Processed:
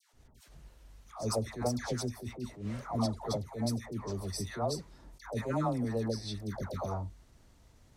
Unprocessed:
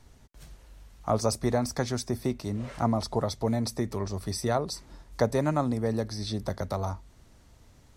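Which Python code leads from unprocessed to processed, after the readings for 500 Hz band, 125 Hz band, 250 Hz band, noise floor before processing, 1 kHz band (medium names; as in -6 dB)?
-7.0 dB, -5.0 dB, -5.5 dB, -57 dBFS, -6.5 dB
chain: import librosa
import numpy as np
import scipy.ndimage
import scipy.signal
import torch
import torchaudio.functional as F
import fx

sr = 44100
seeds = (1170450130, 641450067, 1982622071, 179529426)

y = fx.dispersion(x, sr, late='lows', ms=134.0, hz=1000.0)
y = fx.attack_slew(y, sr, db_per_s=150.0)
y = y * 10.0 ** (-4.5 / 20.0)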